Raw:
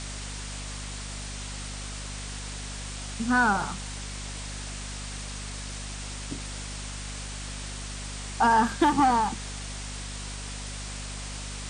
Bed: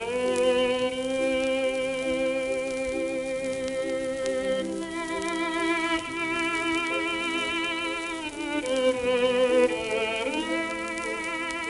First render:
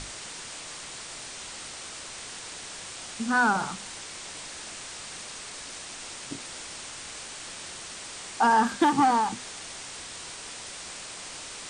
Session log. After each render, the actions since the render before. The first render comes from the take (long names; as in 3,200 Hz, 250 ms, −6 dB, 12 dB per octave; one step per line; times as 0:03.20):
mains-hum notches 50/100/150/200/250 Hz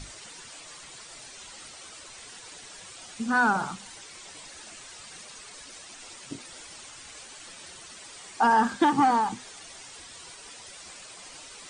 broadband denoise 10 dB, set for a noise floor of −41 dBFS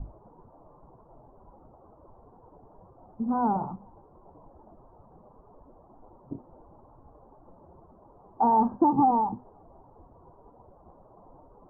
Butterworth low-pass 1,000 Hz 48 dB per octave
low-shelf EQ 110 Hz +8.5 dB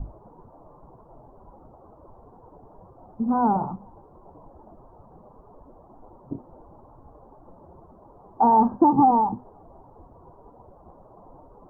level +4.5 dB